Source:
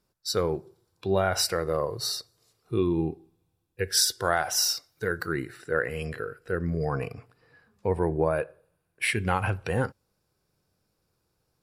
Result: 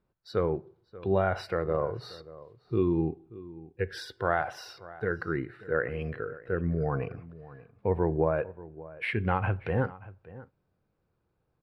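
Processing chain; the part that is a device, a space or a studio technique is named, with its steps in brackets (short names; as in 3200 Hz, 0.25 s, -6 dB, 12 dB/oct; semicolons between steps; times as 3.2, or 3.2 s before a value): shout across a valley (air absorption 450 m; outdoor echo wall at 100 m, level -18 dB)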